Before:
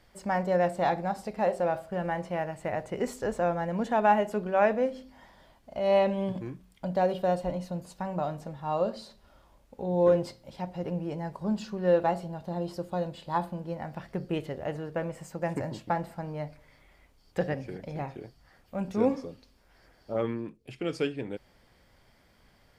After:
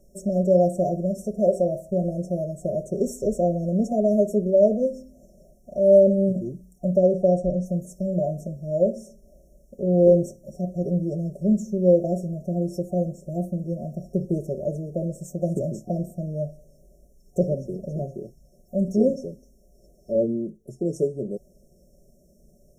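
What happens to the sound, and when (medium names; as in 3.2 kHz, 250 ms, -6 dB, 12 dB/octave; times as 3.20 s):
6.96–7.66 s: distance through air 58 m
whole clip: FFT band-reject 720–5400 Hz; comb 5.2 ms, depth 74%; trim +5 dB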